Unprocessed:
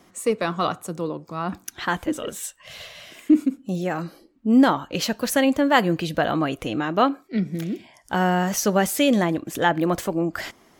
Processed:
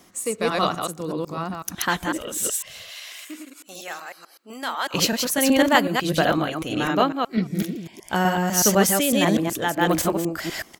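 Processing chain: reverse delay 0.125 s, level -1 dB; 2.9–4.94 HPF 920 Hz 12 dB/oct; speakerphone echo 0.22 s, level -29 dB; tremolo 1.6 Hz, depth 49%; high shelf 4000 Hz +9 dB

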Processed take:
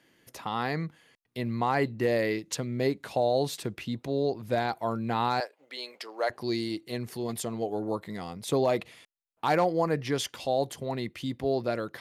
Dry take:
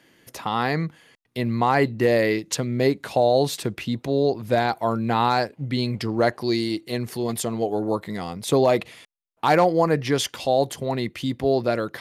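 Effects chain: 5.4–6.3 HPF 490 Hz 24 dB/oct; gain -7 dB

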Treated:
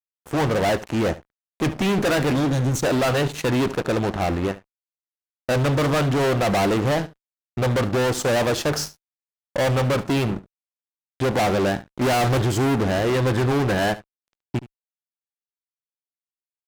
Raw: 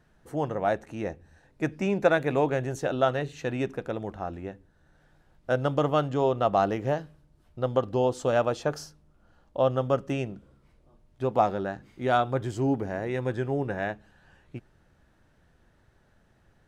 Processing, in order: 2.33–2.83 spectral gain 340–3000 Hz -17 dB; 12.01–12.42 sample leveller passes 2; fuzz box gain 37 dB, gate -46 dBFS; on a send: echo 72 ms -17.5 dB; on the sum: gain -5 dB

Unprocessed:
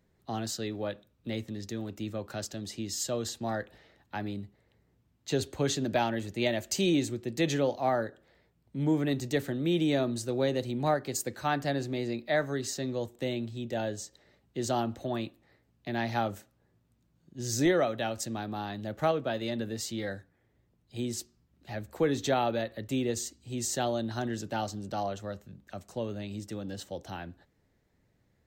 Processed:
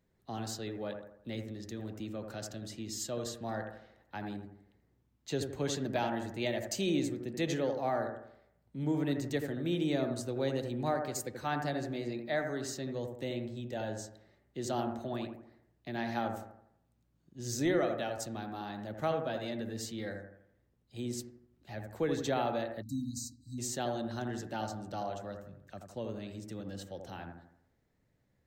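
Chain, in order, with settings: analogue delay 82 ms, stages 1024, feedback 45%, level -5.5 dB; spectral delete 22.82–23.58, 320–3800 Hz; gain -5.5 dB

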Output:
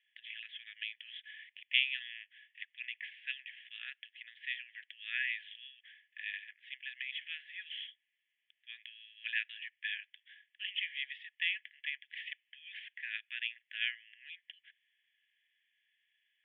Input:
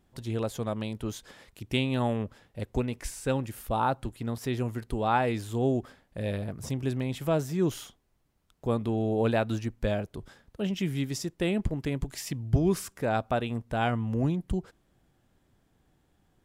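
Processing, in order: Chebyshev band-pass 1700–3400 Hz, order 5; gain +5.5 dB

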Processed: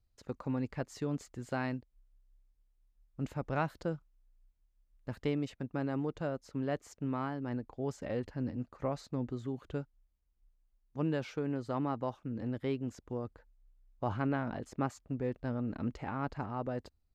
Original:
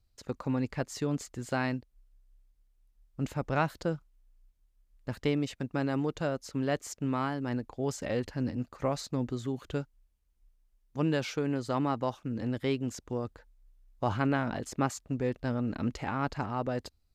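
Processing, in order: high shelf 2800 Hz -6.5 dB, from 5.5 s -11 dB; gain -4 dB

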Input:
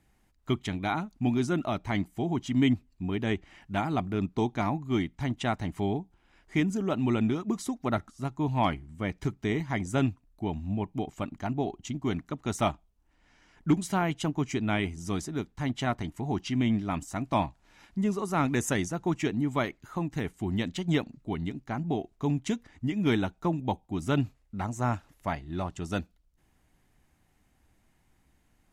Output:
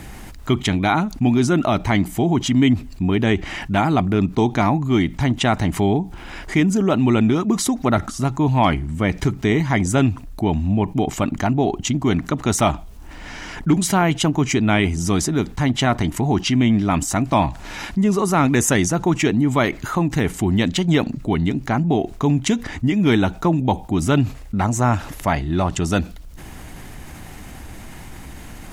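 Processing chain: fast leveller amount 50%; gain +6.5 dB

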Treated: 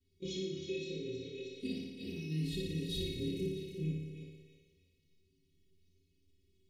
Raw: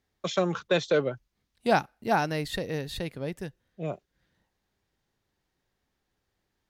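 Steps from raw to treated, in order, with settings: short-time reversal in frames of 64 ms; bell 140 Hz -7.5 dB 0.31 oct; small resonant body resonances 370/1500 Hz, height 7 dB; flange 0.68 Hz, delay 7.2 ms, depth 5.7 ms, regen -83%; thinning echo 0.317 s, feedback 37%, high-pass 540 Hz, level -10.5 dB; compressor 6:1, threshold -43 dBFS, peak gain reduction 17.5 dB; inverse Chebyshev band-stop 610–1600 Hz, stop band 40 dB; tone controls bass +8 dB, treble -5 dB; metallic resonator 80 Hz, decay 0.42 s, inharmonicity 0.03; flutter echo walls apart 9.9 m, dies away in 1.1 s; gain +18 dB

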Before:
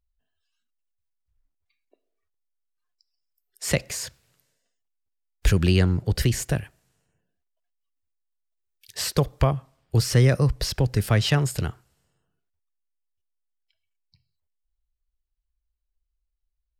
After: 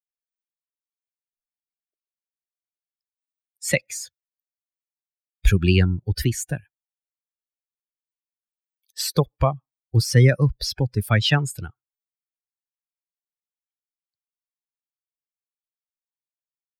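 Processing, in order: per-bin expansion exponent 2; dynamic EQ 2100 Hz, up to +4 dB, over -46 dBFS, Q 0.93; gain +5 dB

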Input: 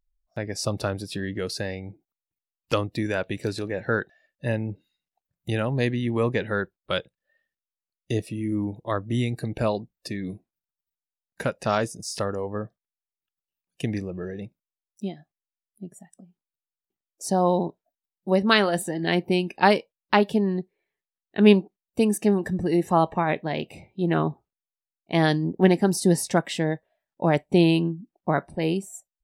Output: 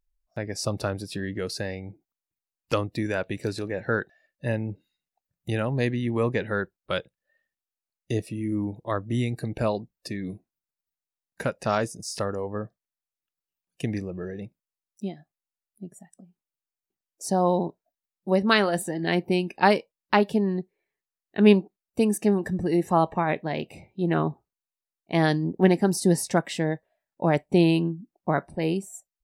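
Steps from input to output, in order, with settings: bell 3300 Hz -3.5 dB 0.42 oct; gain -1 dB

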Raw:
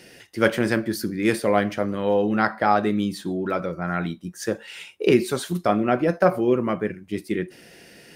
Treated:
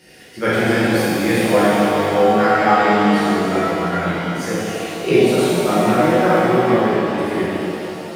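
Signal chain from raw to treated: shimmer reverb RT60 2.9 s, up +7 st, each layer -8 dB, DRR -11 dB; gain -5 dB

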